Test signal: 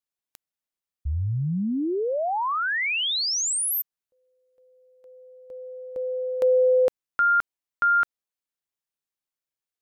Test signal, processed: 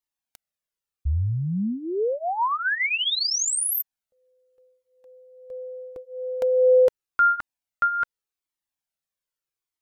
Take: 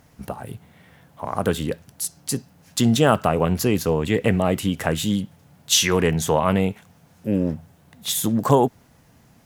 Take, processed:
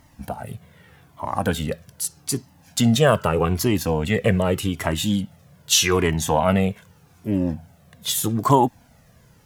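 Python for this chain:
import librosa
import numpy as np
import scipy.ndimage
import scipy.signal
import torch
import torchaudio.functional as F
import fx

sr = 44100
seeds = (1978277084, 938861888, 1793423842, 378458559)

y = fx.comb_cascade(x, sr, direction='falling', hz=0.82)
y = y * 10.0 ** (5.0 / 20.0)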